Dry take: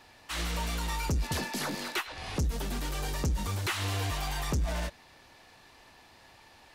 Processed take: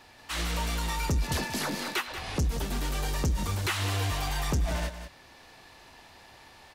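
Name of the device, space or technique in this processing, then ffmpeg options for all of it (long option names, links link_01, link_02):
ducked delay: -filter_complex "[0:a]asplit=3[link_01][link_02][link_03];[link_02]adelay=185,volume=-3dB[link_04];[link_03]apad=whole_len=305682[link_05];[link_04][link_05]sidechaincompress=threshold=-38dB:ratio=8:attack=16:release=810[link_06];[link_01][link_06]amix=inputs=2:normalize=0,volume=2dB"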